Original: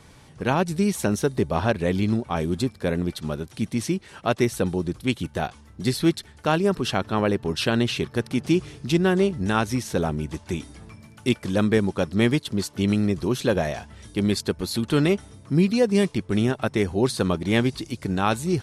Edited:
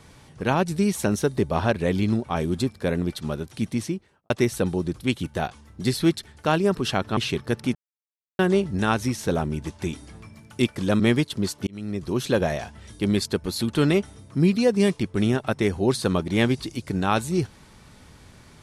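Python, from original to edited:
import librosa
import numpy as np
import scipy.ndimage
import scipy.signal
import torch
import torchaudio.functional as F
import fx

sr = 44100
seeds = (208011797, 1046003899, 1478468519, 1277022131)

y = fx.studio_fade_out(x, sr, start_s=3.68, length_s=0.62)
y = fx.edit(y, sr, fx.cut(start_s=7.17, length_s=0.67),
    fx.silence(start_s=8.42, length_s=0.64),
    fx.cut(start_s=11.67, length_s=0.48),
    fx.fade_in_span(start_s=12.82, length_s=0.57), tone=tone)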